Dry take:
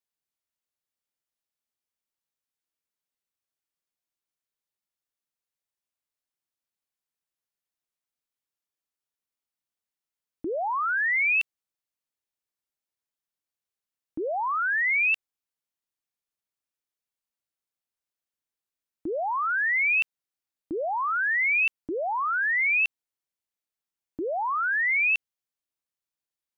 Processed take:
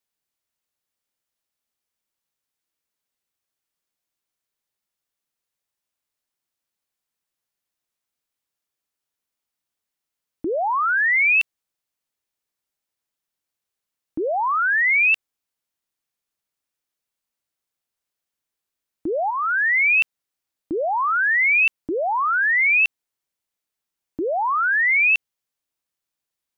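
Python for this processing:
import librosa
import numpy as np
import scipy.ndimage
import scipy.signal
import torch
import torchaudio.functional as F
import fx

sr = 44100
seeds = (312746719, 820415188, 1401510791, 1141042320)

y = fx.highpass(x, sr, hz=1100.0, slope=12, at=(19.3, 19.96), fade=0.02)
y = F.gain(torch.from_numpy(y), 6.0).numpy()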